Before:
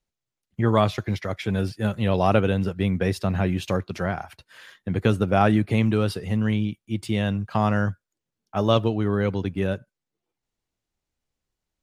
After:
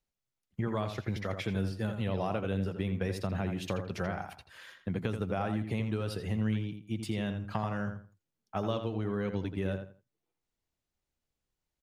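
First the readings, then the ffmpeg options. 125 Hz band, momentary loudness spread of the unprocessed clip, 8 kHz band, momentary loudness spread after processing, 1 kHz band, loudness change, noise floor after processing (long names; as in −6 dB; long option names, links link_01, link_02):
−10.0 dB, 9 LU, −8.0 dB, 7 LU, −12.0 dB, −10.5 dB, below −85 dBFS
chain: -filter_complex "[0:a]acompressor=threshold=-25dB:ratio=6,asplit=2[link_01][link_02];[link_02]adelay=83,lowpass=frequency=3100:poles=1,volume=-7dB,asplit=2[link_03][link_04];[link_04]adelay=83,lowpass=frequency=3100:poles=1,volume=0.25,asplit=2[link_05][link_06];[link_06]adelay=83,lowpass=frequency=3100:poles=1,volume=0.25[link_07];[link_03][link_05][link_07]amix=inputs=3:normalize=0[link_08];[link_01][link_08]amix=inputs=2:normalize=0,volume=-4.5dB"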